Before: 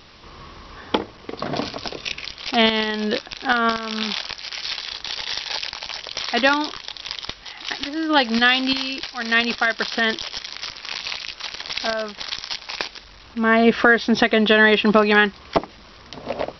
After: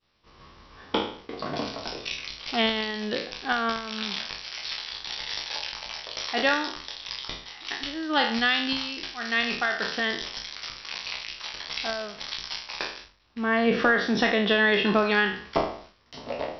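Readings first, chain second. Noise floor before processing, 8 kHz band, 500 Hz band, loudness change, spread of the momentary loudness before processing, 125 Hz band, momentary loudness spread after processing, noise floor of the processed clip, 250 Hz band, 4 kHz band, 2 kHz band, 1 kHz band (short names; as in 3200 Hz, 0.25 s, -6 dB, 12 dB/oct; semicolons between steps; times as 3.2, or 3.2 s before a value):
-45 dBFS, n/a, -6.5 dB, -6.5 dB, 15 LU, -5.5 dB, 13 LU, -54 dBFS, -7.0 dB, -5.5 dB, -6.0 dB, -6.0 dB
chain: spectral trails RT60 0.55 s; expander -34 dBFS; gain -8 dB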